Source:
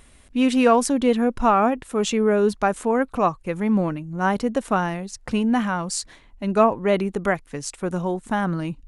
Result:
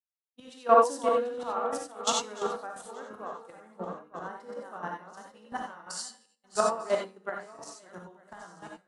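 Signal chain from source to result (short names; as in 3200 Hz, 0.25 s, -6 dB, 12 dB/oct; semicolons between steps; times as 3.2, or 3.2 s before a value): regenerating reverse delay 0.447 s, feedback 65%, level -6 dB; weighting filter A; gate -30 dBFS, range -18 dB; bell 2400 Hz -12.5 dB 0.38 oct; notches 50/100/150/200 Hz; resonator 97 Hz, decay 0.76 s, harmonics all, mix 60%; chopper 2.9 Hz, depth 65%, duty 15%; non-linear reverb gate 0.11 s rising, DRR 1 dB; three-band expander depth 100%; gain -2 dB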